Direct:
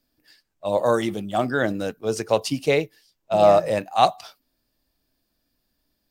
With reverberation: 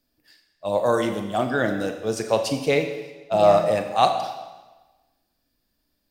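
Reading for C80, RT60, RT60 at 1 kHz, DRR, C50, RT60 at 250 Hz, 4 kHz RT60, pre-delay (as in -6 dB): 9.0 dB, 1.2 s, 1.2 s, 5.5 dB, 7.5 dB, 1.2 s, 1.1 s, 34 ms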